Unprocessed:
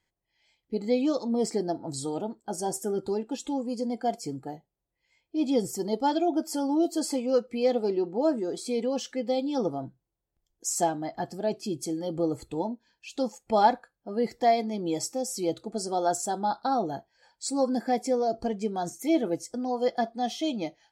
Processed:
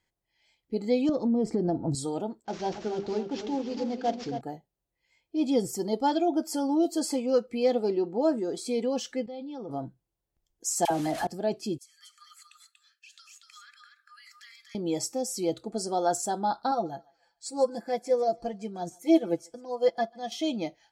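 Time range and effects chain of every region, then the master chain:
1.09–1.95 tilt -4 dB/oct + compressor, threshold -22 dBFS
2.45–4.41 CVSD 32 kbps + notches 50/100/150/200/250/300/350/400 Hz + darkening echo 0.276 s, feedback 43%, low-pass 4900 Hz, level -8.5 dB
9.26–9.71 LPF 3600 Hz + level quantiser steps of 19 dB
10.85–11.27 delta modulation 64 kbps, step -41 dBFS + dispersion lows, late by 55 ms, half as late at 930 Hz + fast leveller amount 50%
11.78–14.75 Chebyshev high-pass 1200 Hz, order 10 + compressor 20:1, threshold -48 dBFS + echo 0.238 s -4.5 dB
16.71–20.32 comb 5.9 ms, depth 63% + thinning echo 0.144 s, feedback 42%, high-pass 800 Hz, level -19 dB + upward expander, over -36 dBFS
whole clip: dry

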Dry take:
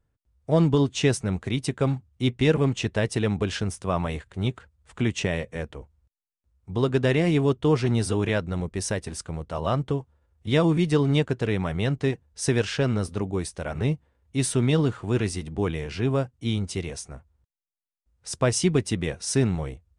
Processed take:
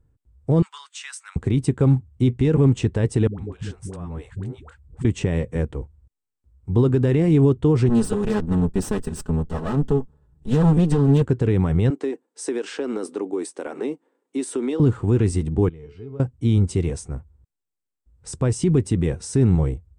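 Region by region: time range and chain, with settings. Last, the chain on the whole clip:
0.62–1.36 steep high-pass 1200 Hz + compressor 2:1, threshold -33 dBFS
3.27–5.05 compressor 12:1, threshold -36 dBFS + dispersion highs, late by 0.118 s, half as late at 460 Hz
7.89–11.22 minimum comb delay 4.7 ms + notch 2200 Hz, Q 6.5
11.9–14.8 steep high-pass 270 Hz + compressor 5:1, threshold -29 dBFS
15.69–16.2 compressor 3:1, threshold -25 dBFS + air absorption 97 m + resonator 430 Hz, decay 0.39 s, harmonics odd, mix 90%
whole clip: thirty-one-band EQ 200 Hz -4 dB, 630 Hz -9 dB, 8000 Hz +10 dB; limiter -19.5 dBFS; tilt shelf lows +8.5 dB; gain +3.5 dB

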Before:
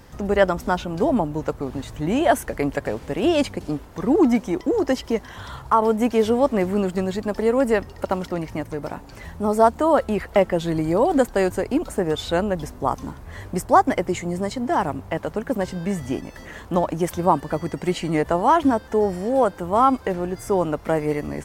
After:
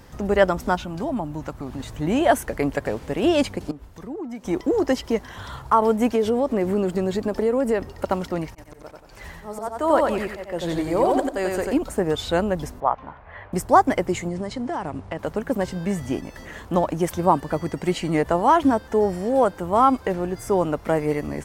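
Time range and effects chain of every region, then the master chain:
0.75–1.8 bell 460 Hz -10 dB 0.38 oct + compressor 1.5:1, threshold -31 dBFS
3.71–4.45 compressor 4:1, threshold -33 dBFS + three-band expander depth 100%
6.15–7.91 compressor 3:1, threshold -22 dBFS + bell 380 Hz +5 dB 1.6 oct
8.49–11.73 bell 150 Hz -6.5 dB 2.4 oct + auto swell 0.329 s + feedback echo 91 ms, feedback 33%, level -3 dB
12.8–13.53 LPF 2700 Hz 24 dB/oct + resonant low shelf 460 Hz -10 dB, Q 1.5
14.28–15.19 median filter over 5 samples + elliptic low-pass 10000 Hz, stop band 50 dB + compressor 10:1, threshold -23 dBFS
whole clip: dry

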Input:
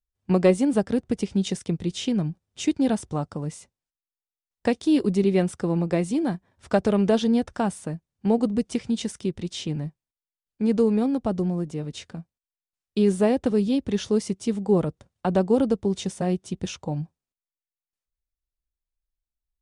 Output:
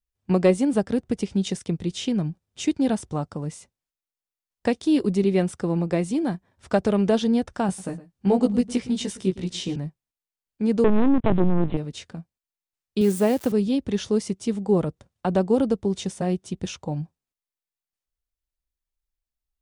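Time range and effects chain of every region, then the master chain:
7.67–9.76 doubler 16 ms -2.5 dB + echo 0.112 s -17 dB
10.84–11.77 sample leveller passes 3 + LPC vocoder at 8 kHz pitch kept
13.01–13.52 switching spikes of -27 dBFS + HPF 93 Hz
whole clip: dry

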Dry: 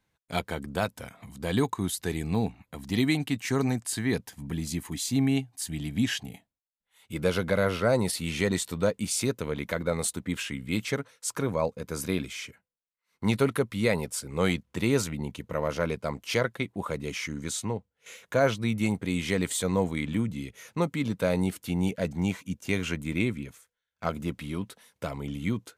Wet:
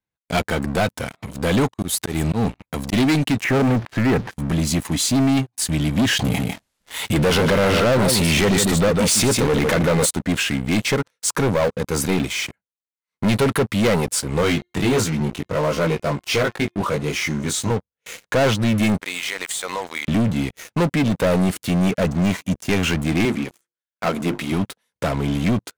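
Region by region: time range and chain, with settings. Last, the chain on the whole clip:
1.66–2.93 high shelf 8900 Hz +5.5 dB + auto swell 0.151 s
3.44–4.31 zero-crossing step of -38 dBFS + LPF 2400 Hz 24 dB/oct
6.19–10.06 echo 0.151 s -11 dB + fast leveller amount 50%
14.41–17.71 de-hum 355.5 Hz, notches 20 + chorus 1.4 Hz, delay 18.5 ms, depth 2.2 ms
19–20.08 HPF 920 Hz + compressor, threshold -35 dBFS
23.25–24.52 HPF 190 Hz + notches 50/100/150/200/250/300/350 Hz
whole clip: elliptic low-pass 12000 Hz; high shelf 4300 Hz -4 dB; sample leveller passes 5; gain -2.5 dB

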